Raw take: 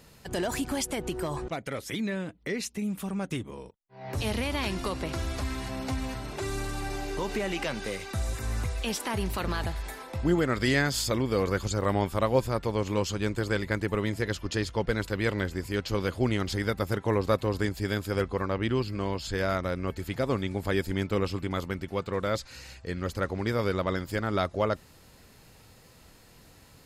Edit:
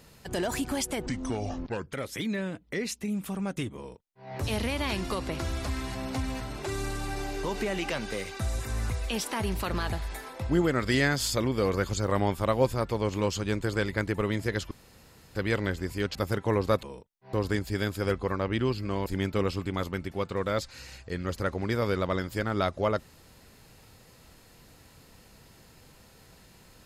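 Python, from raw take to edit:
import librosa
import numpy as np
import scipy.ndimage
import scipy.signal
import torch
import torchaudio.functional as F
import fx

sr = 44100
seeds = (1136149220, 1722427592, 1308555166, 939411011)

y = fx.edit(x, sr, fx.speed_span(start_s=1.06, length_s=0.61, speed=0.7),
    fx.duplicate(start_s=3.51, length_s=0.5, to_s=17.43),
    fx.room_tone_fill(start_s=14.45, length_s=0.64),
    fx.cut(start_s=15.89, length_s=0.86),
    fx.cut(start_s=19.16, length_s=1.67), tone=tone)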